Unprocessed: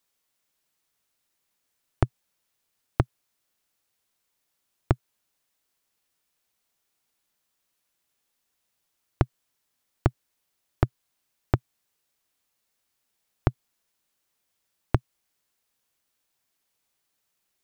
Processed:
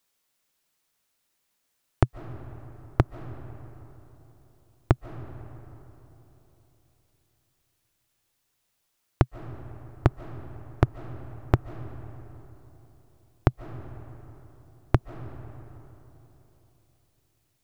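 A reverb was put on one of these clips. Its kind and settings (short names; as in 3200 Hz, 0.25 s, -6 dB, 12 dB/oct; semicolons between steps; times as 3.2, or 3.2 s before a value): digital reverb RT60 3.6 s, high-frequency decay 0.5×, pre-delay 0.105 s, DRR 12.5 dB; gain +2 dB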